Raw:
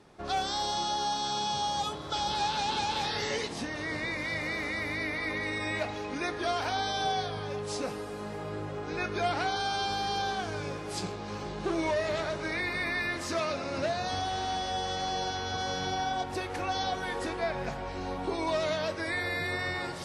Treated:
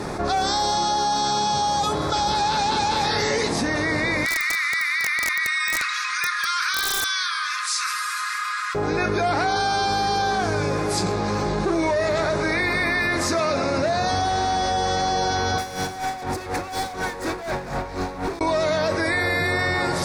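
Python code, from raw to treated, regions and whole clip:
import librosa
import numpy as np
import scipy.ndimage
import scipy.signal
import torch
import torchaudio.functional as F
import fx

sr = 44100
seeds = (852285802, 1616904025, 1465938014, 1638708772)

y = fx.chain(x, sr, fx.steep_highpass(hz=1100.0, slope=96),
    fx.overflow_wrap(gain_db=26.0), at=(4.25, 8.75))
y = fx.chain(y, sr, fx.clip_hard(threshold_db=-37.0),
    fx.tremolo_db(hz=4.1, depth_db=34), at=(15.58, 18.41))
y = fx.peak_eq(y, sr, hz=3000.0, db=-11.0, octaves=0.39)
y = fx.env_flatten(y, sr, amount_pct=70)
y = y * 10.0 ** (6.0 / 20.0)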